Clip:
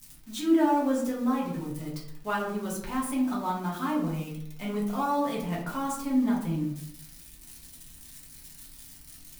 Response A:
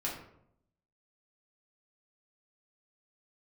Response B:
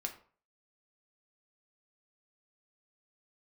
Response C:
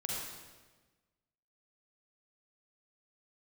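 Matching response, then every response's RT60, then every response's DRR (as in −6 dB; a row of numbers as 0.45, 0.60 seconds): A; 0.75, 0.45, 1.3 seconds; −5.5, 2.5, −3.5 decibels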